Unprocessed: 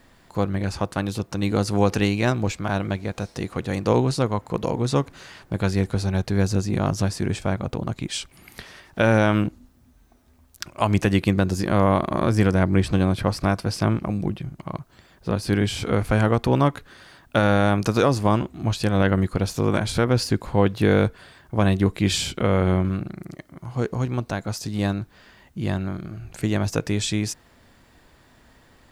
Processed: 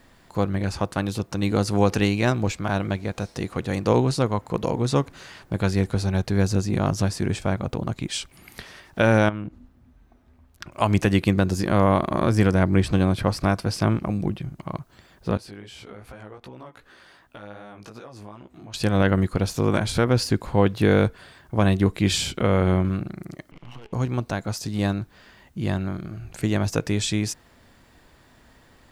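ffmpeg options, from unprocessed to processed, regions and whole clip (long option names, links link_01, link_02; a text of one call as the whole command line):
ffmpeg -i in.wav -filter_complex "[0:a]asettb=1/sr,asplit=3[link_01][link_02][link_03];[link_01]atrim=end=9.294[link_04];[link_02]atrim=start=9.29:end=10.72,asetpts=PTS-STARTPTS,afade=type=in:duration=0.004:curve=qsin,afade=type=out:start_time=1.426:duration=0.004:curve=qsin,bass=frequency=250:gain=2,treble=frequency=4000:gain=-13,acompressor=threshold=-30dB:ratio=3:attack=3.2:release=140:knee=1:detection=peak[link_05];[link_03]atrim=start=10.716[link_06];[link_04][link_05]acrossfade=duration=0.004:curve1=hsin:curve2=qsin[link_07];[link_07][link_06]acrossfade=duration=0.004:curve1=qsin:curve2=hsin,asettb=1/sr,asplit=3[link_08][link_09][link_10];[link_08]atrim=end=15.374[link_11];[link_09]atrim=start=15.37:end=18.74,asetpts=PTS-STARTPTS,afade=type=in:duration=0.004:curve=qsin,afade=type=out:start_time=3.366:duration=0.004:curve=qsin,bass=frequency=250:gain=-8,treble=frequency=4000:gain=-4,acompressor=threshold=-38dB:ratio=4:attack=3.2:release=140:knee=1:detection=peak,flanger=delay=15:depth=4.9:speed=2.6[link_12];[link_10]atrim=start=18.736[link_13];[link_11][link_12]acrossfade=duration=0.004:curve1=hsin:curve2=qsin[link_14];[link_14][link_13]acrossfade=duration=0.004:curve1=qsin:curve2=hsin,asettb=1/sr,asplit=3[link_15][link_16][link_17];[link_15]atrim=end=23.514[link_18];[link_16]atrim=start=23.51:end=23.93,asetpts=PTS-STARTPTS,afade=type=in:duration=0.004:curve=qsin,afade=type=out:start_time=0.416:duration=0.004:curve=qsin,lowpass=frequency=2800:width_type=q:width=15,acompressor=threshold=-33dB:ratio=6:attack=3.2:release=140:knee=1:detection=peak,aeval=exprs='max(val(0),0)':channel_layout=same[link_19];[link_17]atrim=start=23.926[link_20];[link_18][link_19]acrossfade=duration=0.004:curve1=hsin:curve2=qsin[link_21];[link_21][link_20]acrossfade=duration=0.004:curve1=qsin:curve2=hsin" out.wav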